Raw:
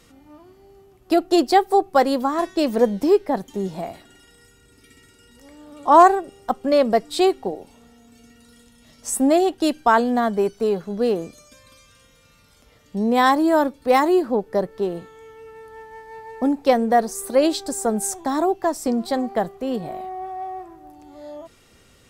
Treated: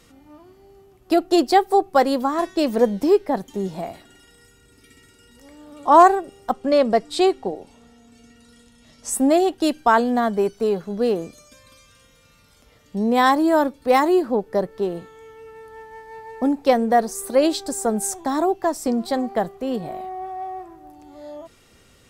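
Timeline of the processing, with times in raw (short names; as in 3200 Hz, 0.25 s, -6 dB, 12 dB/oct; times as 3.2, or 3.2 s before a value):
6.52–9.11 LPF 9900 Hz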